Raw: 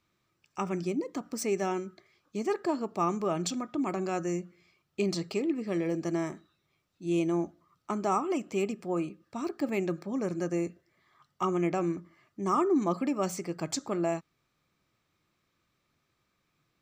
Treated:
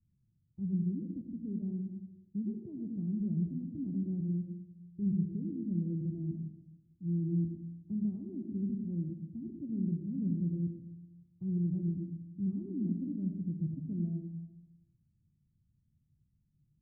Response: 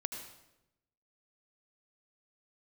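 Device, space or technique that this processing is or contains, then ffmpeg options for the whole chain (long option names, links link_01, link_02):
club heard from the street: -filter_complex "[0:a]alimiter=limit=-21.5dB:level=0:latency=1,lowpass=frequency=170:width=0.5412,lowpass=frequency=170:width=1.3066[link_01];[1:a]atrim=start_sample=2205[link_02];[link_01][link_02]afir=irnorm=-1:irlink=0,volume=9dB"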